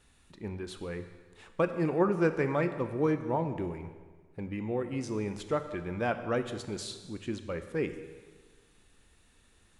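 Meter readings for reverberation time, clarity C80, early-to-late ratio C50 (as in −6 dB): 1.5 s, 11.5 dB, 10.0 dB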